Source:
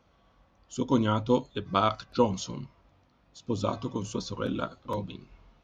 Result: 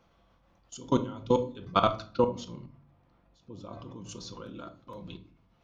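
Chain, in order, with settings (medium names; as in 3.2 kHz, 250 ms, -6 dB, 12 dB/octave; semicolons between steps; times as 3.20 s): 2.04–4.09 s: low-pass 1.8 kHz 6 dB/octave; level held to a coarse grid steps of 23 dB; simulated room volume 460 m³, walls furnished, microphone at 0.8 m; trim +2.5 dB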